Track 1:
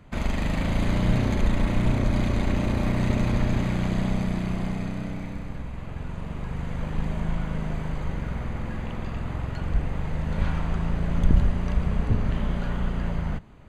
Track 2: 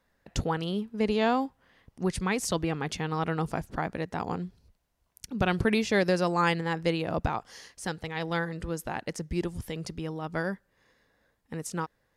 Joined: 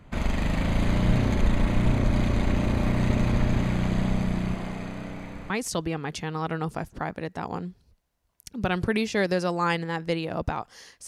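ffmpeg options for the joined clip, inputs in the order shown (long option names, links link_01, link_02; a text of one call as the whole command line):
ffmpeg -i cue0.wav -i cue1.wav -filter_complex "[0:a]asettb=1/sr,asplit=3[link_01][link_02][link_03];[link_01]atrim=end=4.544[link_04];[link_02]atrim=start=4.54:end=5.5,asetpts=PTS-STARTPTS,afade=type=in:duration=0.004:curve=qsin,afade=type=out:start_time=0.956:duration=0.004:curve=qsin,bass=frequency=250:gain=-7,treble=frequency=4000:gain=-1[link_05];[link_03]atrim=start=5.496[link_06];[link_04][link_05]acrossfade=duration=0.004:curve1=hsin:curve2=qsin[link_07];[link_07][link_06]acrossfade=duration=0.004:curve1=qsin:curve2=hsin,apad=whole_dur=11.07,atrim=end=11.07,atrim=end=5.502[link_08];[1:a]atrim=start=2.268:end=7.84[link_09];[link_08][link_09]acrossfade=duration=0.004:curve1=hsin:curve2=hsin" out.wav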